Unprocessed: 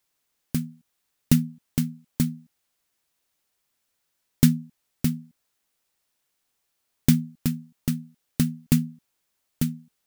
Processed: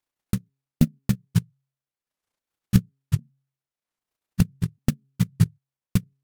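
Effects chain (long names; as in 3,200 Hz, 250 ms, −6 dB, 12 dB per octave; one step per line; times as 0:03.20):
pitch shifter swept by a sawtooth −8.5 semitones, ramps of 1,285 ms
dynamic equaliser 410 Hz, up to −5 dB, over −38 dBFS, Q 0.71
time stretch by overlap-add 0.62×, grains 67 ms
high-shelf EQ 2,700 Hz −8.5 dB
hum removal 135.8 Hz, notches 3
transient designer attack +12 dB, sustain −8 dB
level −3.5 dB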